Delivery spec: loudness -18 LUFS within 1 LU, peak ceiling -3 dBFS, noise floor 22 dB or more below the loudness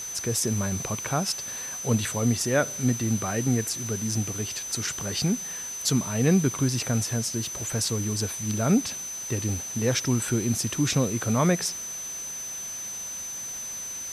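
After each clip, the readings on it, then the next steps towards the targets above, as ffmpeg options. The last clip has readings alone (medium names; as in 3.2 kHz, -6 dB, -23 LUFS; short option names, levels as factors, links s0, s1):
steady tone 6.1 kHz; tone level -33 dBFS; noise floor -35 dBFS; noise floor target -49 dBFS; loudness -26.5 LUFS; peak level -10.0 dBFS; loudness target -18.0 LUFS
-> -af "bandreject=f=6100:w=30"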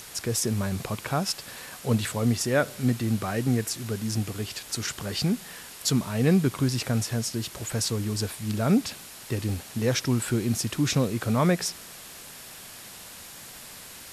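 steady tone not found; noise floor -44 dBFS; noise floor target -49 dBFS
-> -af "afftdn=nr=6:nf=-44"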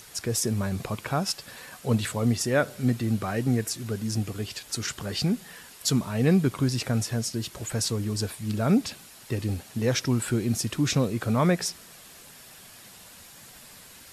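noise floor -49 dBFS; loudness -27.0 LUFS; peak level -10.5 dBFS; loudness target -18.0 LUFS
-> -af "volume=2.82,alimiter=limit=0.708:level=0:latency=1"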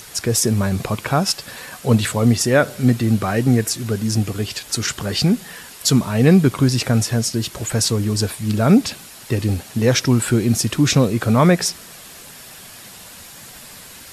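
loudness -18.0 LUFS; peak level -3.0 dBFS; noise floor -40 dBFS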